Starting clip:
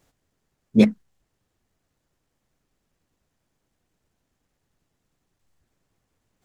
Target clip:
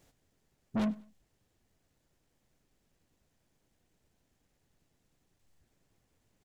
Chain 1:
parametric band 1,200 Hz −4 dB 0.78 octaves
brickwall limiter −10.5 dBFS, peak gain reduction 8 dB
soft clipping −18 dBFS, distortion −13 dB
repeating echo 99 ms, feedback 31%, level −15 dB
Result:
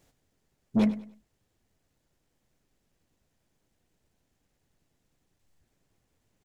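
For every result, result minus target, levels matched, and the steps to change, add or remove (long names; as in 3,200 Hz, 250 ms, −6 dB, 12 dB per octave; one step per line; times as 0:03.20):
soft clipping: distortion −7 dB; echo-to-direct +6 dB
change: soft clipping −28 dBFS, distortion −6 dB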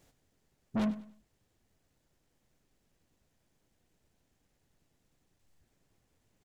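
echo-to-direct +6 dB
change: repeating echo 99 ms, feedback 31%, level −21 dB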